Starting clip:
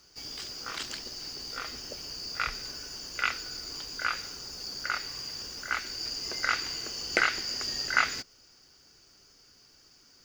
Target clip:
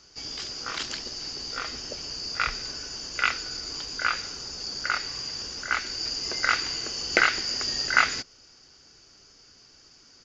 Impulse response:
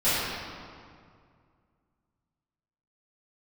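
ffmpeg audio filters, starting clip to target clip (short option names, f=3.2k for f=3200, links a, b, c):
-af "aresample=16000,aresample=44100,volume=4.5dB"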